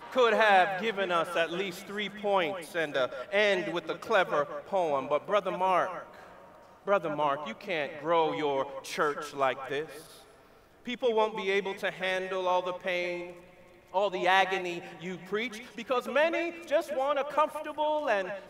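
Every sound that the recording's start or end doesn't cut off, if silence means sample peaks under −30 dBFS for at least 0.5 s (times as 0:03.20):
0:06.88–0:09.83
0:10.88–0:13.22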